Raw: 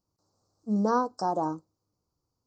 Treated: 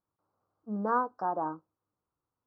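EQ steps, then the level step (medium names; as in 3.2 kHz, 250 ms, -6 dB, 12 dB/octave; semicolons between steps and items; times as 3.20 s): resonant low-pass 1.6 kHz, resonance Q 1.9; distance through air 180 m; tilt EQ +2 dB/octave; -3.5 dB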